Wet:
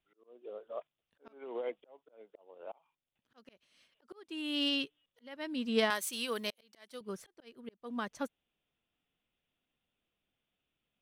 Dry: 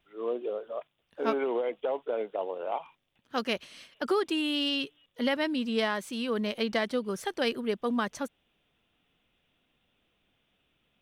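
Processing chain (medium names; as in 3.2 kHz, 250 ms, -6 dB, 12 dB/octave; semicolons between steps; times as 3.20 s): 5.90–7.01 s: RIAA curve recording; slow attack 515 ms; upward expansion 1.5:1, over -51 dBFS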